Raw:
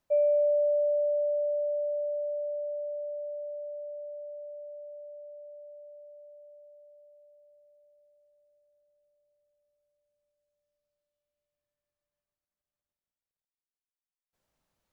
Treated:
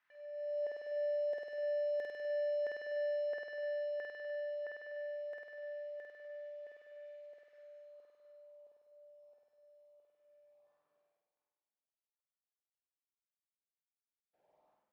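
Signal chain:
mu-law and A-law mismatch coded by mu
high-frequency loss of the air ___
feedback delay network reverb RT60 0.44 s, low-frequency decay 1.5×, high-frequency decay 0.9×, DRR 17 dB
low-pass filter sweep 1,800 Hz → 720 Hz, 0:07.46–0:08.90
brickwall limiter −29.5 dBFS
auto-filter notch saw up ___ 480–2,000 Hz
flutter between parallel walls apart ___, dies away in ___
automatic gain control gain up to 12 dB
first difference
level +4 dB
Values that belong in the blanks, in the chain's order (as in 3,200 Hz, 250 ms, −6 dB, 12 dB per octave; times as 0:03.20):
120 metres, 1.5 Hz, 8.5 metres, 1.3 s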